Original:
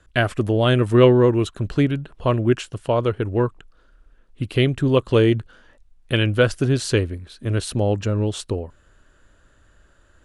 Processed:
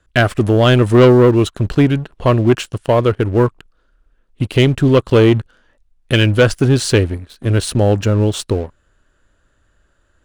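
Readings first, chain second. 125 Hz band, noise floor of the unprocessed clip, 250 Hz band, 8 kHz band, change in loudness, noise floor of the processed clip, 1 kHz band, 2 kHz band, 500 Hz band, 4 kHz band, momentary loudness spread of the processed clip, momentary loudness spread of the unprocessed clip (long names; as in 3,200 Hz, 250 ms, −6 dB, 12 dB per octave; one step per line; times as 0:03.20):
+6.5 dB, −57 dBFS, +6.5 dB, +7.5 dB, +6.0 dB, −61 dBFS, +6.5 dB, +6.0 dB, +5.5 dB, +6.0 dB, 9 LU, 10 LU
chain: leveller curve on the samples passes 2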